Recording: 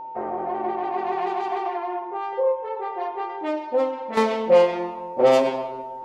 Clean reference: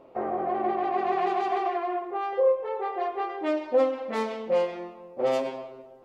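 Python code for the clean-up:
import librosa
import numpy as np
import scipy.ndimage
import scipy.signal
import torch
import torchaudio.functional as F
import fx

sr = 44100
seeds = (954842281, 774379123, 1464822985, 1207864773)

y = fx.notch(x, sr, hz=900.0, q=30.0)
y = fx.gain(y, sr, db=fx.steps((0.0, 0.0), (4.17, -9.0)))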